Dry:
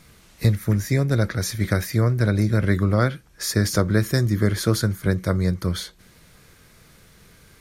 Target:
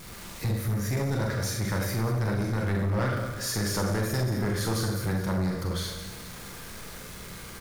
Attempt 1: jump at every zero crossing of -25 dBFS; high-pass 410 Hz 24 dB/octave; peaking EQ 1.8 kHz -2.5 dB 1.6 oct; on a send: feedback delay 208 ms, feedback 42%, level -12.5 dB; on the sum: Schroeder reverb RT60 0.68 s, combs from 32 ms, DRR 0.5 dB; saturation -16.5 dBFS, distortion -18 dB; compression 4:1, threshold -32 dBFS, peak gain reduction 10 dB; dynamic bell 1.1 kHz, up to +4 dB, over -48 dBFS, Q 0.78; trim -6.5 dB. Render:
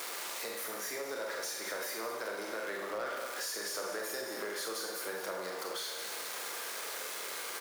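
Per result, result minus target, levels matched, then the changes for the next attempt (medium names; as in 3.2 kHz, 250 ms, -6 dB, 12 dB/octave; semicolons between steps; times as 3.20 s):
compression: peak gain reduction +10 dB; jump at every zero crossing: distortion +8 dB; 500 Hz band +3.5 dB
remove: compression 4:1, threshold -32 dBFS, peak gain reduction 10 dB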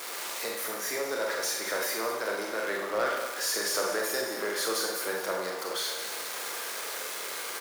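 jump at every zero crossing: distortion +8 dB; 500 Hz band +4.0 dB
change: jump at every zero crossing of -34 dBFS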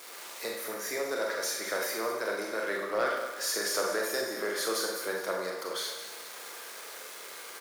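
500 Hz band +5.5 dB
remove: high-pass 410 Hz 24 dB/octave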